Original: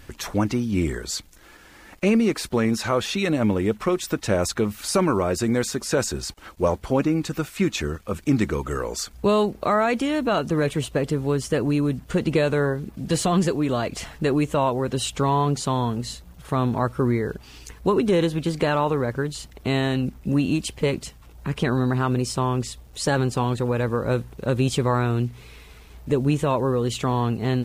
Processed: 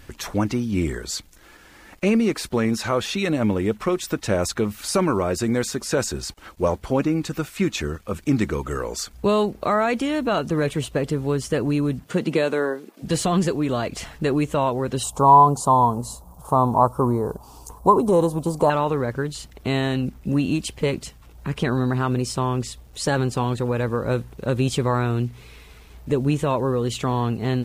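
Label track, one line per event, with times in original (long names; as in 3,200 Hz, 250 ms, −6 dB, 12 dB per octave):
12.020000	13.020000	high-pass filter 110 Hz → 360 Hz 24 dB per octave
15.030000	18.700000	drawn EQ curve 370 Hz 0 dB, 1,000 Hz +13 dB, 1,900 Hz −22 dB, 9,200 Hz +6 dB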